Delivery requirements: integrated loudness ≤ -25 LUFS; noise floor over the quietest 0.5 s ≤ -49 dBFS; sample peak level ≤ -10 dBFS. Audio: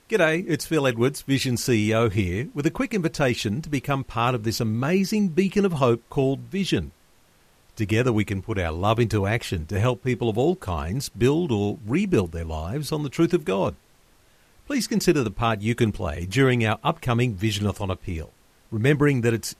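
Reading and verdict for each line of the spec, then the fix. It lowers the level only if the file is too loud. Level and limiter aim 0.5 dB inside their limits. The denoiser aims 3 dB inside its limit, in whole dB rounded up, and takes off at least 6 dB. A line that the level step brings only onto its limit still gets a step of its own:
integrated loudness -24.0 LUFS: fail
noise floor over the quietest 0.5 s -58 dBFS: OK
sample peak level -6.5 dBFS: fail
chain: gain -1.5 dB; limiter -10.5 dBFS

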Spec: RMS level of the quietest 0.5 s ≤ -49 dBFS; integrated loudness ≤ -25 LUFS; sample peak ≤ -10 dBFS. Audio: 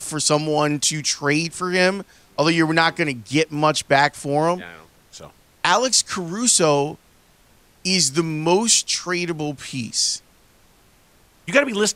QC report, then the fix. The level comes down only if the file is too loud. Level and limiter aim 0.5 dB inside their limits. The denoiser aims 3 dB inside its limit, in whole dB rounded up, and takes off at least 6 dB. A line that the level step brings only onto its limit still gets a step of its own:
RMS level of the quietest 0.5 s -55 dBFS: OK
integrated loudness -19.5 LUFS: fail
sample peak -4.5 dBFS: fail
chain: gain -6 dB

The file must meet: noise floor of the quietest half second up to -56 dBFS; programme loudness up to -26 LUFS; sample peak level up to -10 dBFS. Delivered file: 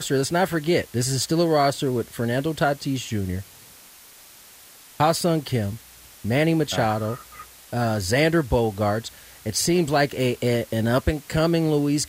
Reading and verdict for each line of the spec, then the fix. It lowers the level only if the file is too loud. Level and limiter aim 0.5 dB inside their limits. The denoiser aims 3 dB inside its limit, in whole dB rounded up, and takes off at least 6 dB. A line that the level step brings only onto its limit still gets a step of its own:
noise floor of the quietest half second -48 dBFS: fail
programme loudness -23.0 LUFS: fail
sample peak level -7.0 dBFS: fail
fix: denoiser 8 dB, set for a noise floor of -48 dBFS; gain -3.5 dB

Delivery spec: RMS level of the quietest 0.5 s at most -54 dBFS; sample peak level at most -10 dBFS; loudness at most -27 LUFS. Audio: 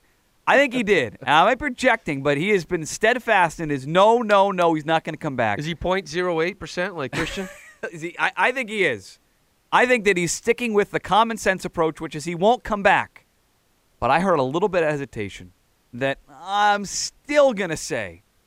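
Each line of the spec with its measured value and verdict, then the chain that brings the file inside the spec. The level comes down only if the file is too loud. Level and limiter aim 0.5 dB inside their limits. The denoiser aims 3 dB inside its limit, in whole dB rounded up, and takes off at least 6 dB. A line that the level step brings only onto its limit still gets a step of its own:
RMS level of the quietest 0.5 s -64 dBFS: OK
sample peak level -4.5 dBFS: fail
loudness -21.0 LUFS: fail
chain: gain -6.5 dB

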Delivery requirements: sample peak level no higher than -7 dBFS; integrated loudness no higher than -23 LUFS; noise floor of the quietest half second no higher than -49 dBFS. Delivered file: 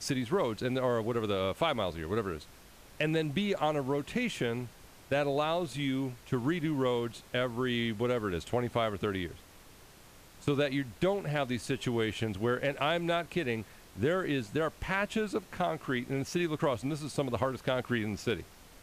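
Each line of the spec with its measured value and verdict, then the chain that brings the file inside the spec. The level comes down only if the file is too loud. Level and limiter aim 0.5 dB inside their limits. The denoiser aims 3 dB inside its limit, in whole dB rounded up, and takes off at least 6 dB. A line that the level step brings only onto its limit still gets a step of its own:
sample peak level -17.0 dBFS: OK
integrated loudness -32.5 LUFS: OK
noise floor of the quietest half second -55 dBFS: OK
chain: none

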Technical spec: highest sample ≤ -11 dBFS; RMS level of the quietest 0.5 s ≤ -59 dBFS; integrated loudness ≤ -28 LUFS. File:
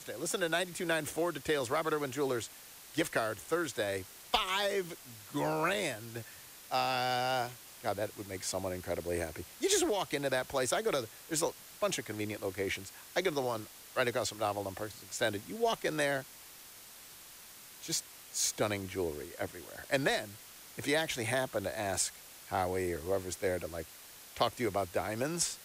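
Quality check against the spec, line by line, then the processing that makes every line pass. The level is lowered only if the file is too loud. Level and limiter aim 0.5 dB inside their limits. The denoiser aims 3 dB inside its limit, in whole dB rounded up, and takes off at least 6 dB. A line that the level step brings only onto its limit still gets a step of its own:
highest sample -17.0 dBFS: OK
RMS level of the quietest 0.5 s -53 dBFS: fail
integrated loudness -34.0 LUFS: OK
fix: denoiser 9 dB, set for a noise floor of -53 dBFS

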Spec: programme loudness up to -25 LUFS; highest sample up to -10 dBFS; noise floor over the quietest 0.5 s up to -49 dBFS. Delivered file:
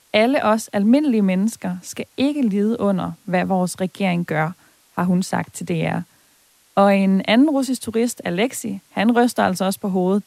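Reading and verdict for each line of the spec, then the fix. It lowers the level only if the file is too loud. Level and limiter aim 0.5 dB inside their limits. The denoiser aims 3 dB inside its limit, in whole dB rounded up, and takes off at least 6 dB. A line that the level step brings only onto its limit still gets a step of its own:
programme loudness -19.5 LUFS: fail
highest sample -1.5 dBFS: fail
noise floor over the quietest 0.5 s -57 dBFS: OK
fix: gain -6 dB; limiter -10.5 dBFS

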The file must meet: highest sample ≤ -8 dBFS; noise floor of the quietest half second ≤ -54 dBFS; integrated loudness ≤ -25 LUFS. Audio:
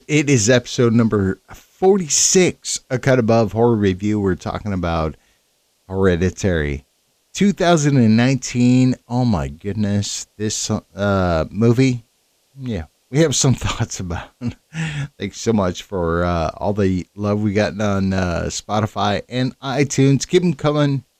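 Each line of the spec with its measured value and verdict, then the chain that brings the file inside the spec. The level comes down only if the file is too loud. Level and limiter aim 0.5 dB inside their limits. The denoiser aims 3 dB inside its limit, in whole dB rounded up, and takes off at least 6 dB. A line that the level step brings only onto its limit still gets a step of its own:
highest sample -3.5 dBFS: fail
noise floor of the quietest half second -63 dBFS: OK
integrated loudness -18.0 LUFS: fail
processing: gain -7.5 dB

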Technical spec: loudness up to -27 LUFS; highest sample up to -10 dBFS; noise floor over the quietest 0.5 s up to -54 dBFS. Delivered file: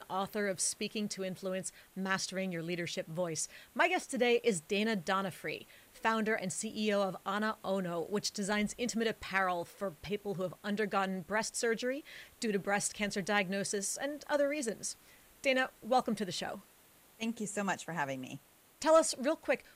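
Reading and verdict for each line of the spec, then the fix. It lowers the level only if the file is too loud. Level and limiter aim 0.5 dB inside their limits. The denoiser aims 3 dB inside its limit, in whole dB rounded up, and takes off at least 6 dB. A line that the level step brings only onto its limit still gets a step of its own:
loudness -34.5 LUFS: OK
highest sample -16.5 dBFS: OK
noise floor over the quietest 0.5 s -63 dBFS: OK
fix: none

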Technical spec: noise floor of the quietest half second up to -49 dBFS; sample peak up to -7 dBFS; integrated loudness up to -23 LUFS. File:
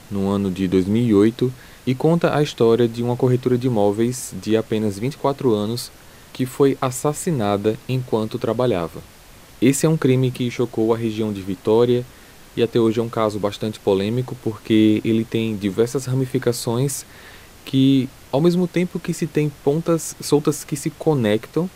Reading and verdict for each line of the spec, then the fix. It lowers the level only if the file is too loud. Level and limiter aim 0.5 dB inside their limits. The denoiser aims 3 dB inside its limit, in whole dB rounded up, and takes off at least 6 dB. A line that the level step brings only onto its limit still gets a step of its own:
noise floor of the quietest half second -45 dBFS: fail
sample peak -4.5 dBFS: fail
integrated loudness -20.0 LUFS: fail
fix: denoiser 6 dB, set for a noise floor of -45 dBFS; gain -3.5 dB

